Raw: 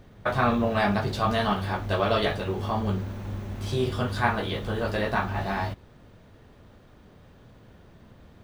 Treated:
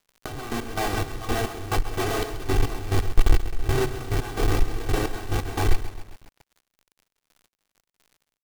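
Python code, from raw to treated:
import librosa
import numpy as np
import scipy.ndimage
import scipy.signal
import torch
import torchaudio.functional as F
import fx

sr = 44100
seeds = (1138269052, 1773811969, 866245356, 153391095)

y = fx.add_hum(x, sr, base_hz=60, snr_db=31)
y = fx.schmitt(y, sr, flips_db=-27.0)
y = fx.echo_banded(y, sr, ms=496, feedback_pct=65, hz=2000.0, wet_db=-19.5)
y = fx.quant_dither(y, sr, seeds[0], bits=6, dither='none')
y = y + 0.84 * np.pad(y, (int(2.6 * sr / 1000.0), 0))[:len(y)]
y = fx.dmg_crackle(y, sr, seeds[1], per_s=93.0, level_db=-49.0)
y = fx.peak_eq(y, sr, hz=62.0, db=-12.0, octaves=1.7)
y = fx.rider(y, sr, range_db=4, speed_s=0.5)
y = fx.low_shelf(y, sr, hz=130.0, db=11.5)
y = fx.step_gate(y, sr, bpm=175, pattern='.xx...x..xxx..', floor_db=-12.0, edge_ms=4.5)
y = fx.echo_crushed(y, sr, ms=133, feedback_pct=55, bits=7, wet_db=-12.0)
y = y * librosa.db_to_amplitude(4.0)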